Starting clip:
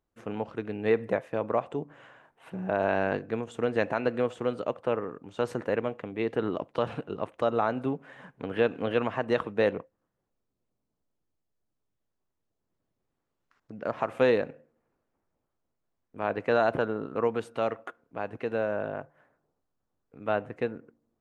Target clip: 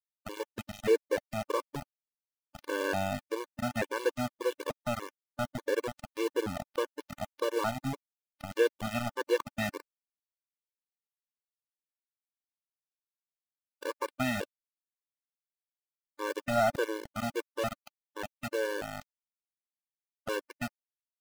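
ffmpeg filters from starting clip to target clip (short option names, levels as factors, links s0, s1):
-af "aeval=exprs='val(0)*gte(abs(val(0)),0.0422)':c=same,afftfilt=real='re*gt(sin(2*PI*1.7*pts/sr)*(1-2*mod(floor(b*sr/1024/300),2)),0)':imag='im*gt(sin(2*PI*1.7*pts/sr)*(1-2*mod(floor(b*sr/1024/300),2)),0)':win_size=1024:overlap=0.75"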